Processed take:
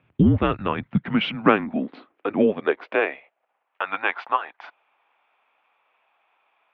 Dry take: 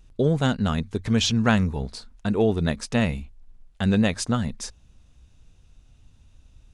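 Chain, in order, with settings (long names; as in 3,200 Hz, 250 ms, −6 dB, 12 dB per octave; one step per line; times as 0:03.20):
single-sideband voice off tune −210 Hz 250–2,900 Hz
high-pass filter sweep 100 Hz → 840 Hz, 0:00.36–0:03.66
level +5.5 dB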